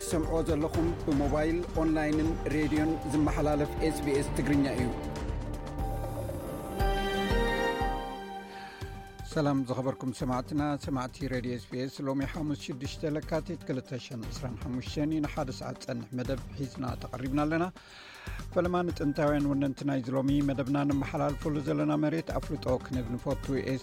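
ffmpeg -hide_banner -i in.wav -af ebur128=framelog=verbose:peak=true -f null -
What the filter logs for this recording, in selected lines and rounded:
Integrated loudness:
  I:         -31.5 LUFS
  Threshold: -41.7 LUFS
Loudness range:
  LRA:         5.8 LU
  Threshold: -51.9 LUFS
  LRA low:   -35.0 LUFS
  LRA high:  -29.3 LUFS
True peak:
  Peak:      -16.3 dBFS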